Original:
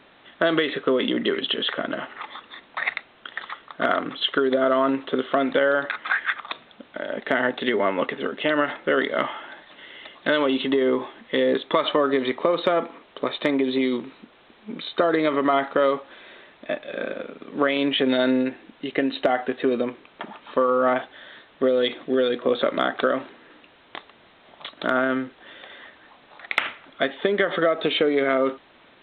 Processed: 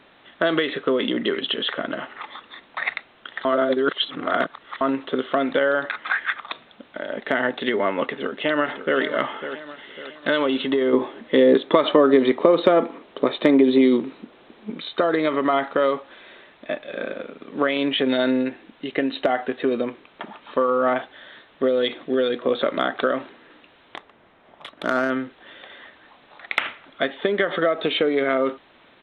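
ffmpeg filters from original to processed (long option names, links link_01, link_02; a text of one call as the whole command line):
ffmpeg -i in.wav -filter_complex "[0:a]asplit=2[link_01][link_02];[link_02]afade=type=in:start_time=8.1:duration=0.01,afade=type=out:start_time=9:duration=0.01,aecho=0:1:550|1100|1650|2200|2750:0.298538|0.134342|0.060454|0.0272043|0.0122419[link_03];[link_01][link_03]amix=inputs=2:normalize=0,asettb=1/sr,asplit=3[link_04][link_05][link_06];[link_04]atrim=end=10.934[link_07];[link_05]atrim=start=10.93:end=14.7,asetpts=PTS-STARTPTS,afade=type=in:duration=0.004:curve=qsin,afade=type=out:start_time=3.766:duration=0.004:curve=qsin,equalizer=frequency=310:width_type=o:width=2.3:gain=7.5[link_08];[link_06]atrim=start=14.696[link_09];[link_07][link_08]acrossfade=duration=0.004:curve1=hsin:curve2=qsin[link_10];[link_10][link_09]acrossfade=duration=0.004:curve1=qsin:curve2=hsin,asettb=1/sr,asplit=3[link_11][link_12][link_13];[link_11]atrim=end=23.964[link_14];[link_12]atrim=start=23.96:end=25.1,asetpts=PTS-STARTPTS,afade=type=in:duration=0.004:curve=qsin,afade=type=out:start_time=1.136:duration=0.004:curve=qsin,adynamicsmooth=sensitivity=2.5:basefreq=2600[link_15];[link_13]atrim=start=25.096[link_16];[link_14][link_15]acrossfade=duration=0.004:curve1=hsin:curve2=qsin[link_17];[link_17][link_16]acrossfade=duration=0.004:curve1=qsin:curve2=hsin,asplit=3[link_18][link_19][link_20];[link_18]atrim=end=3.452[link_21];[link_19]atrim=start=3.448:end=4.812,asetpts=PTS-STARTPTS,areverse[link_22];[link_20]atrim=start=4.808[link_23];[link_21][link_22]acrossfade=duration=0.004:curve1=hsin:curve2=hsin[link_24];[link_24][link_23]acrossfade=duration=0.004:curve1=hsin:curve2=hsin" out.wav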